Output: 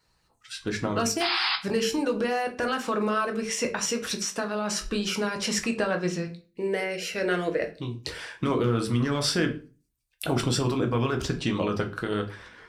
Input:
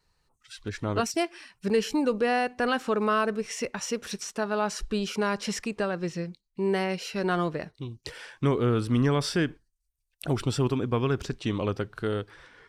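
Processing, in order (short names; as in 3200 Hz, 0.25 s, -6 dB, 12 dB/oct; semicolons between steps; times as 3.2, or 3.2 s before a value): 1.2–1.56 painted sound noise 710–5200 Hz -29 dBFS; 6.27–7.75 ten-band EQ 125 Hz -9 dB, 250 Hz -5 dB, 500 Hz +8 dB, 1000 Hz -12 dB, 2000 Hz +6 dB, 4000 Hz -5 dB; hard clip -15.5 dBFS, distortion -32 dB; HPF 47 Hz 12 dB/oct; notches 50/100/150/200/250/300/350/400/450 Hz; limiter -21 dBFS, peak gain reduction 6.5 dB; harmonic-percussive split percussive +6 dB; reverb RT60 0.35 s, pre-delay 6 ms, DRR 3.5 dB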